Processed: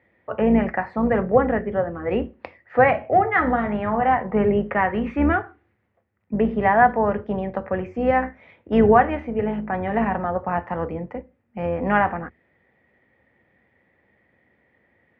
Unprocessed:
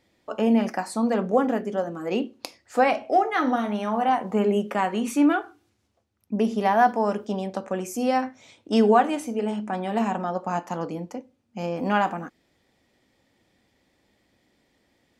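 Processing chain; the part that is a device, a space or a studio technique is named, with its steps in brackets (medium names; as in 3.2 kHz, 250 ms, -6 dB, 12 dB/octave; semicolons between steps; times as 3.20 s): sub-octave bass pedal (octave divider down 2 oct, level -3 dB; cabinet simulation 77–2300 Hz, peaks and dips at 290 Hz -5 dB, 500 Hz +3 dB, 1.9 kHz +9 dB); trim +2.5 dB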